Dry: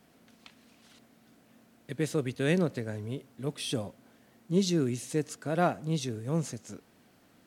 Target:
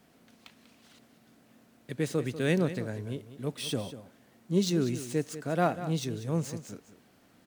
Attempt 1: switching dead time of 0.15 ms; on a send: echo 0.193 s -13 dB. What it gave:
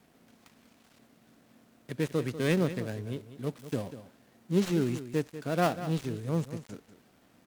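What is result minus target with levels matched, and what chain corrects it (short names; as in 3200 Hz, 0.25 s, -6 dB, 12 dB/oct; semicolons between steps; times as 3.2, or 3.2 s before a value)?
switching dead time: distortion +13 dB
switching dead time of 0.027 ms; on a send: echo 0.193 s -13 dB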